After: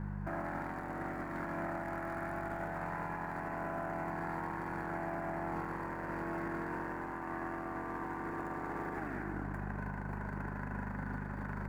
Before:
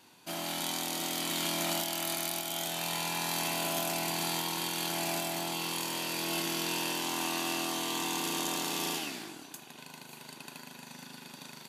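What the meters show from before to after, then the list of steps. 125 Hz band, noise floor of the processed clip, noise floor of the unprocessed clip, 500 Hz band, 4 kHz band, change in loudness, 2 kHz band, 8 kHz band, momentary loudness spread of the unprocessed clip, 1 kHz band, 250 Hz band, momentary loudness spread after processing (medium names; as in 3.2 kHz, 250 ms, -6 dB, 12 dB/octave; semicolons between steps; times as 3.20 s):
+3.0 dB, -41 dBFS, -51 dBFS, -2.5 dB, under -30 dB, -7.5 dB, -4.0 dB, under -30 dB, 15 LU, -2.0 dB, -1.5 dB, 2 LU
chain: median filter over 15 samples; resonant high shelf 2.5 kHz -13.5 dB, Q 3; mains buzz 50 Hz, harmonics 4, -48 dBFS -1 dB/octave; compression, threshold -43 dBFS, peak gain reduction 11.5 dB; peak limiter -39 dBFS, peak gain reduction 6.5 dB; trim +9 dB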